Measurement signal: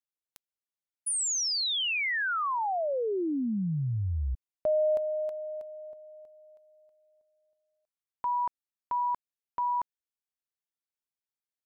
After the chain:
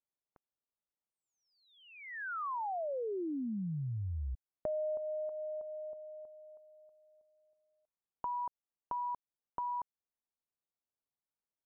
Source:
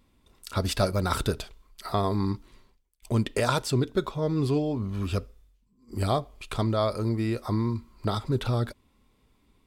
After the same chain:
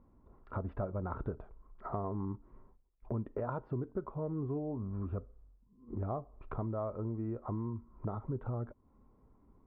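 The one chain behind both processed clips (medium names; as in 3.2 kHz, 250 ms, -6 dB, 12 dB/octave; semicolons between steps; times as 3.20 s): low-pass 1.2 kHz 24 dB/octave; compression 2.5:1, threshold -41 dBFS; trim +1 dB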